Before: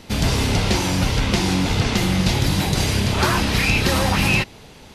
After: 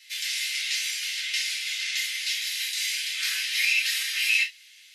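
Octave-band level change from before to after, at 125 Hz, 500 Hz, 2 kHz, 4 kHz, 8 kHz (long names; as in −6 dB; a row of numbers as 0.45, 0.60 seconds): below −40 dB, below −40 dB, −2.5 dB, −2.0 dB, −2.5 dB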